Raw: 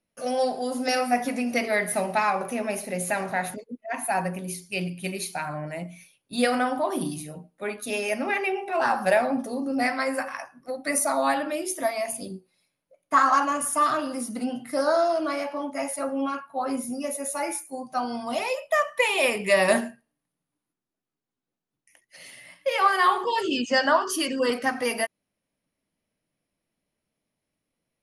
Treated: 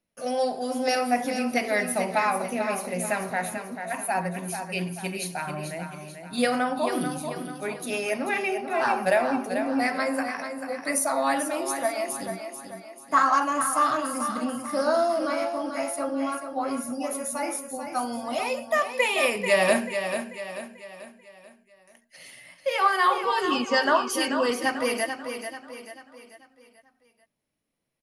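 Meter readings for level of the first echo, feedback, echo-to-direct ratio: -8.0 dB, 44%, -7.0 dB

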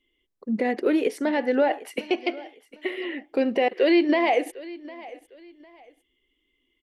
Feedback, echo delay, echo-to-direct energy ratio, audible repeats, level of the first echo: 29%, 0.754 s, -18.5 dB, 2, -19.0 dB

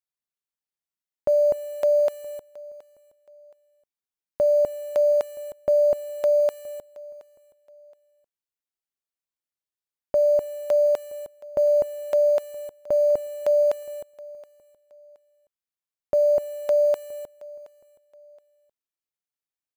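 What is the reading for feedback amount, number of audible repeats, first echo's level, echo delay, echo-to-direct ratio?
30%, 2, -21.0 dB, 0.722 s, -20.5 dB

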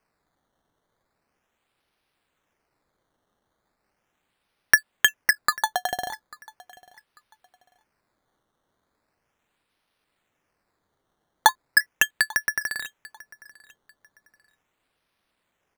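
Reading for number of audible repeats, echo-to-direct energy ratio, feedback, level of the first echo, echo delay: 2, -22.0 dB, 27%, -22.5 dB, 0.843 s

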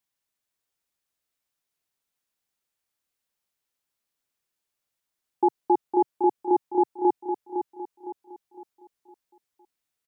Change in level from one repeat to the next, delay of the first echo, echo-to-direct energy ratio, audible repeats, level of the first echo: -8.0 dB, 0.509 s, -6.5 dB, 4, -7.5 dB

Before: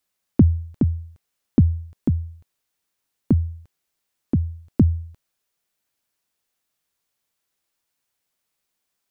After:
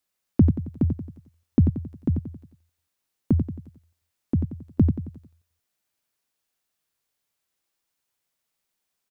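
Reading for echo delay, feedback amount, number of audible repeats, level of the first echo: 90 ms, 44%, 4, -7.0 dB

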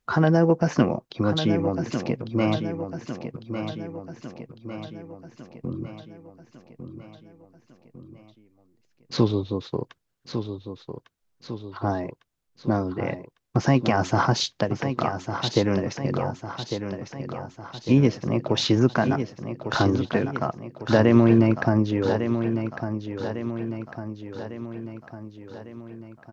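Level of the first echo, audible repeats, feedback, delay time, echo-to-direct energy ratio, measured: -8.5 dB, 5, 54%, 1.152 s, -7.0 dB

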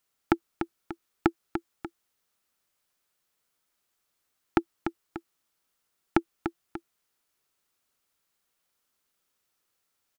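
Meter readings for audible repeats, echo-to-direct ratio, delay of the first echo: 2, -7.0 dB, 0.294 s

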